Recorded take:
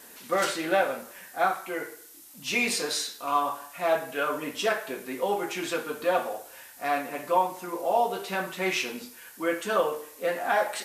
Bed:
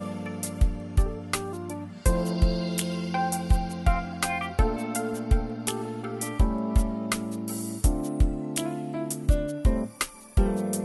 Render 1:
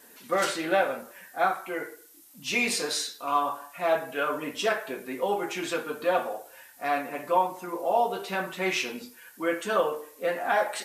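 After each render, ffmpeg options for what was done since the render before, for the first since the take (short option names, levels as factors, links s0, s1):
-af "afftdn=nr=6:nf=-49"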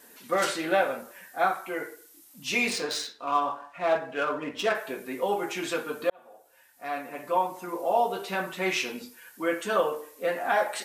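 -filter_complex "[0:a]asettb=1/sr,asplit=3[s0][s1][s2];[s0]atrim=end=2.704[s3];[s1]atrim=start=2.7:end=4.75,asetpts=PTS-STARTPTS,afade=t=in:d=0.004:c=qsin,afade=t=out:st=2.046:d=0.004:c=qsin,adynamicsmooth=sensitivity=5:basefreq=3200[s4];[s2]atrim=start=4.746[s5];[s3][s4]acrossfade=d=0.004:c1=hsin:c2=qsin[s6];[s6][s5]acrossfade=d=0.004:c1=qsin:c2=hsin,asplit=2[s7][s8];[s7]atrim=end=6.1,asetpts=PTS-STARTPTS,afade=t=out:st=6.096:d=0.004:c=hsin[s9];[s8]atrim=start=6.1,asetpts=PTS-STARTPTS,afade=t=in:d=1.59[s10];[s9][s10]concat=n=2:v=0:a=1"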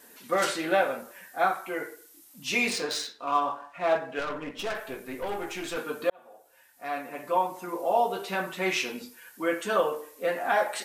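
-filter_complex "[0:a]asettb=1/sr,asplit=3[s0][s1][s2];[s0]atrim=end=4.194[s3];[s1]atrim=start=4.19:end=5.77,asetpts=PTS-STARTPTS,afade=t=in:d=0.004:c=qsin,afade=t=out:st=1.576:d=0.004:c=qsin,aeval=exprs='(tanh(25.1*val(0)+0.5)-tanh(0.5))/25.1':c=same[s4];[s2]atrim=start=5.766[s5];[s3][s4]acrossfade=d=0.004:c1=hsin:c2=qsin[s6];[s6][s5]acrossfade=d=0.004:c1=qsin:c2=hsin"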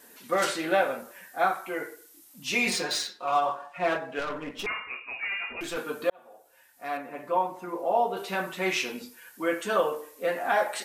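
-filter_complex "[0:a]asettb=1/sr,asplit=3[s0][s1][s2];[s0]atrim=end=2.664[s3];[s1]atrim=start=2.66:end=3.96,asetpts=PTS-STARTPTS,afade=t=in:d=0.004:c=qsin,afade=t=out:st=1.296:d=0.004:c=qsin,aecho=1:1:5.5:0.85,atrim=end_sample=57330[s4];[s2]atrim=start=3.956[s5];[s3][s4]acrossfade=d=0.004:c1=hsin:c2=qsin[s6];[s6][s5]acrossfade=d=0.004:c1=qsin:c2=hsin,asettb=1/sr,asplit=3[s7][s8][s9];[s7]atrim=end=4.664[s10];[s8]atrim=start=4.66:end=5.61,asetpts=PTS-STARTPTS,afade=t=in:d=0.004:c=qsin,afade=t=out:st=0.946:d=0.004:c=qsin,lowpass=f=2400:t=q:w=0.5098,lowpass=f=2400:t=q:w=0.6013,lowpass=f=2400:t=q:w=0.9,lowpass=f=2400:t=q:w=2.563,afreqshift=-2800[s11];[s9]atrim=start=5.606[s12];[s10][s11]acrossfade=d=0.004:c1=hsin:c2=qsin[s13];[s13][s12]acrossfade=d=0.004:c1=qsin:c2=hsin,asettb=1/sr,asplit=3[s14][s15][s16];[s14]atrim=end=6.974[s17];[s15]atrim=start=6.97:end=8.17,asetpts=PTS-STARTPTS,afade=t=in:d=0.004:c=qsin,afade=t=out:st=1.196:d=0.004:c=qsin,highshelf=f=3400:g=-10[s18];[s16]atrim=start=8.166[s19];[s17][s18]acrossfade=d=0.004:c1=hsin:c2=qsin[s20];[s20][s19]acrossfade=d=0.004:c1=qsin:c2=hsin"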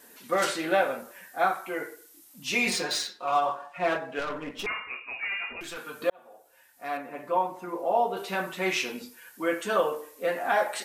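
-filter_complex "[0:a]asettb=1/sr,asplit=3[s0][s1][s2];[s0]atrim=end=5.504[s3];[s1]atrim=start=5.5:end=6.02,asetpts=PTS-STARTPTS,afade=t=in:d=0.004:c=qsin,afade=t=out:st=0.516:d=0.004:c=qsin,acrossover=split=170|870[s4][s5][s6];[s4]acompressor=threshold=0.00355:ratio=4[s7];[s5]acompressor=threshold=0.00562:ratio=4[s8];[s6]acompressor=threshold=0.0141:ratio=4[s9];[s7][s8][s9]amix=inputs=3:normalize=0[s10];[s2]atrim=start=6.016[s11];[s3][s10]acrossfade=d=0.004:c1=hsin:c2=qsin[s12];[s12][s11]acrossfade=d=0.004:c1=qsin:c2=hsin"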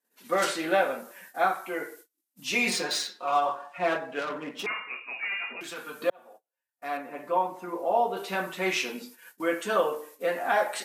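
-af "highpass=f=150:w=0.5412,highpass=f=150:w=1.3066,agate=range=0.0282:threshold=0.00355:ratio=16:detection=peak"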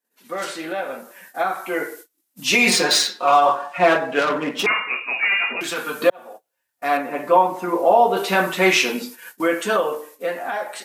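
-af "alimiter=limit=0.133:level=0:latency=1:release=138,dynaudnorm=f=380:g=9:m=4.47"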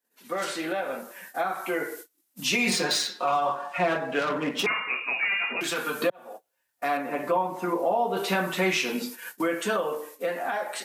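-filter_complex "[0:a]acrossover=split=180[s0][s1];[s1]acompressor=threshold=0.0447:ratio=2.5[s2];[s0][s2]amix=inputs=2:normalize=0"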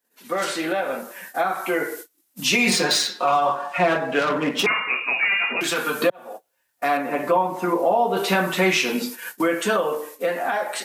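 -af "volume=1.88"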